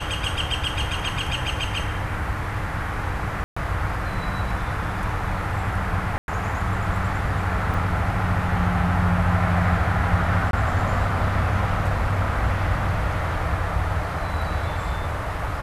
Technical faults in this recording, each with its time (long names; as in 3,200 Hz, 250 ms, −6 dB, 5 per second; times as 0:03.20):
0:03.44–0:03.56: drop-out 125 ms
0:06.18–0:06.28: drop-out 101 ms
0:07.74: drop-out 3.9 ms
0:10.51–0:10.53: drop-out 22 ms